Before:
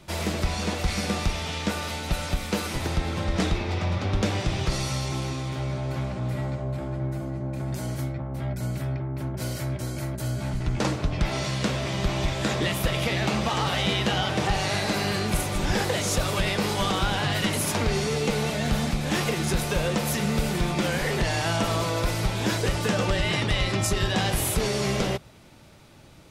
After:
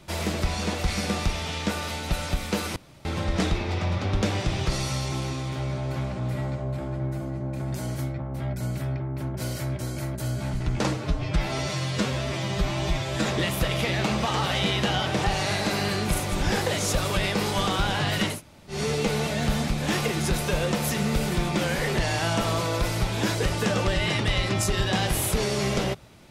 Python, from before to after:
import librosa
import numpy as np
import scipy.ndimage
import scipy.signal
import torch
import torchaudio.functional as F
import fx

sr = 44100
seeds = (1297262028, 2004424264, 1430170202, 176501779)

y = fx.edit(x, sr, fx.room_tone_fill(start_s=2.76, length_s=0.29),
    fx.stretch_span(start_s=10.94, length_s=1.54, factor=1.5),
    fx.room_tone_fill(start_s=17.57, length_s=0.41, crossfade_s=0.16), tone=tone)